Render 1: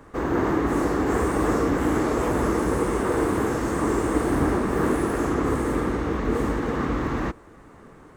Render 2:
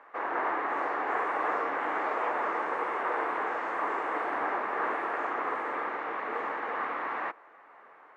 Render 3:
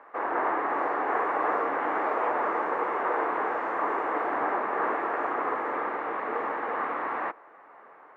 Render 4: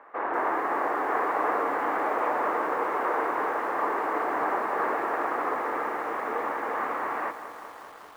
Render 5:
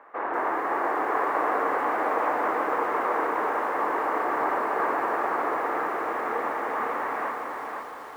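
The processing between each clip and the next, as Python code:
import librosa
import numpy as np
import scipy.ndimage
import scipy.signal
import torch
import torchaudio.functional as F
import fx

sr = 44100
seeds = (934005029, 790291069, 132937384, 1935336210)

y1 = scipy.signal.sosfilt(scipy.signal.cheby1(2, 1.0, [720.0, 2300.0], 'bandpass', fs=sr, output='sos'), x)
y2 = fx.high_shelf(y1, sr, hz=2300.0, db=-12.0)
y2 = y2 * librosa.db_to_amplitude(5.0)
y3 = fx.echo_crushed(y2, sr, ms=196, feedback_pct=80, bits=8, wet_db=-12)
y4 = fx.echo_feedback(y3, sr, ms=509, feedback_pct=38, wet_db=-5.0)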